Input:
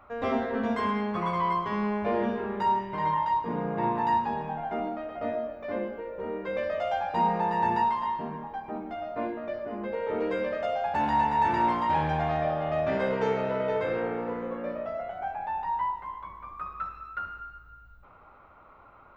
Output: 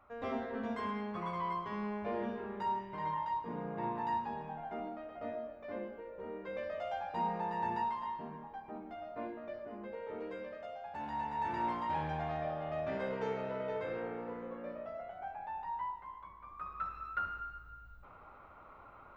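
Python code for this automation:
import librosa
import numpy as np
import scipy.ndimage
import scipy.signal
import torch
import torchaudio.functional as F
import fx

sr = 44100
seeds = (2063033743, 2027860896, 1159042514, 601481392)

y = fx.gain(x, sr, db=fx.line((9.59, -10.0), (10.82, -17.0), (11.68, -10.0), (16.39, -10.0), (17.06, -1.5)))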